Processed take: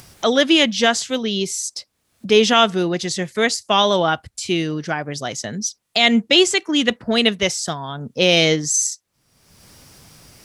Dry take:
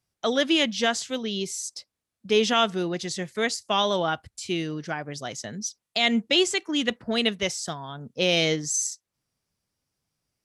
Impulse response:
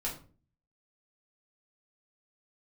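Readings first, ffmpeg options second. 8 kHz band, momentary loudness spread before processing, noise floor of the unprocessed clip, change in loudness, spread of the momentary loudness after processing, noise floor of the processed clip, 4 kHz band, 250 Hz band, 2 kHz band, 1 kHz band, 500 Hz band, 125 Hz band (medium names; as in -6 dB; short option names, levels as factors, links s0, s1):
+7.5 dB, 12 LU, under -85 dBFS, +7.5 dB, 12 LU, -70 dBFS, +7.5 dB, +7.5 dB, +7.5 dB, +7.5 dB, +7.5 dB, +7.5 dB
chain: -af "acompressor=mode=upward:threshold=0.0251:ratio=2.5,volume=2.37"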